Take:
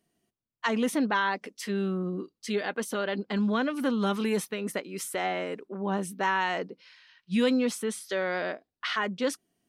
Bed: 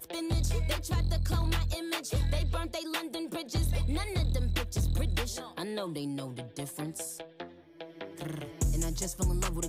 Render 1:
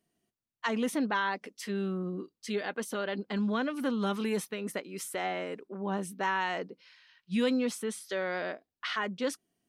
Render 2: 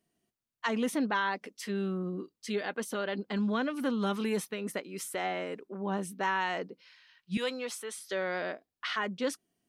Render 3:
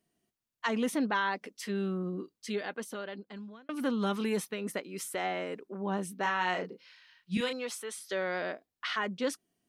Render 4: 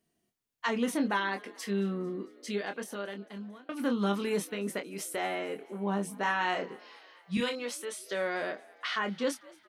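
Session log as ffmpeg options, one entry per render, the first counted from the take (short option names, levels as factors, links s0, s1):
-af "volume=0.668"
-filter_complex "[0:a]asettb=1/sr,asplit=3[s0][s1][s2];[s0]atrim=end=7.374[s3];[s1]atrim=start=7.37:end=7.98,asetpts=PTS-STARTPTS,afade=t=in:d=0.004:c=qsin,afade=t=out:st=0.606:d=0.004:c=qsin,highpass=560[s4];[s2]atrim=start=7.976[s5];[s3][s4]acrossfade=d=0.004:c1=hsin:c2=qsin[s6];[s6][s5]acrossfade=d=0.004:c1=qsin:c2=hsin"
-filter_complex "[0:a]asettb=1/sr,asplit=3[s0][s1][s2];[s0]atrim=end=6.224[s3];[s1]atrim=start=6.22:end=7.53,asetpts=PTS-STARTPTS,afade=t=in:d=0.004:c=qsin,afade=t=out:st=1.306:d=0.004:c=qsin,asplit=2[s4][s5];[s5]adelay=33,volume=0.501[s6];[s4][s6]amix=inputs=2:normalize=0,atrim=end_sample=57771[s7];[s2]atrim=start=7.526[s8];[s3][s7]acrossfade=d=0.004:c1=hsin:c2=qsin[s9];[s9][s8]acrossfade=d=0.004:c1=qsin:c2=hsin,asplit=2[s10][s11];[s10]atrim=end=3.69,asetpts=PTS-STARTPTS,afade=t=out:st=2.35:d=1.34[s12];[s11]atrim=start=3.69,asetpts=PTS-STARTPTS,afade=t=in:d=0.004:c=hsin[s13];[s12][s13]concat=n=2:v=0:a=1"
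-filter_complex "[0:a]asplit=2[s0][s1];[s1]adelay=25,volume=0.447[s2];[s0][s2]amix=inputs=2:normalize=0,asplit=6[s3][s4][s5][s6][s7][s8];[s4]adelay=224,afreqshift=58,volume=0.0668[s9];[s5]adelay=448,afreqshift=116,volume=0.0422[s10];[s6]adelay=672,afreqshift=174,volume=0.0266[s11];[s7]adelay=896,afreqshift=232,volume=0.0168[s12];[s8]adelay=1120,afreqshift=290,volume=0.0105[s13];[s3][s9][s10][s11][s12][s13]amix=inputs=6:normalize=0"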